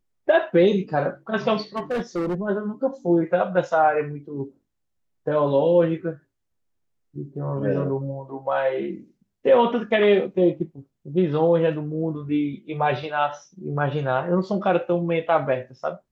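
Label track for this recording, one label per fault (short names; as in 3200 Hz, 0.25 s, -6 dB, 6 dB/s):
1.760000	2.350000	clipped -22 dBFS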